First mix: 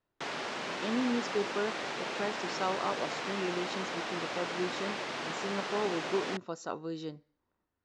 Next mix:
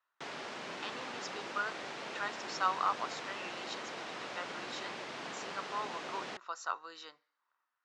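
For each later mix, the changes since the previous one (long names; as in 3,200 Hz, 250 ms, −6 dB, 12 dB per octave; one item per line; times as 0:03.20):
speech: add high-pass with resonance 1,200 Hz, resonance Q 2.2
background −6.0 dB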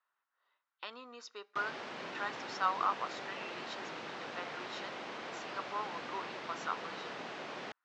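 background: entry +1.35 s
master: add high-frequency loss of the air 91 metres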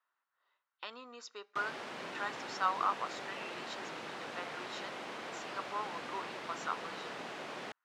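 master: remove low-pass filter 6,600 Hz 24 dB per octave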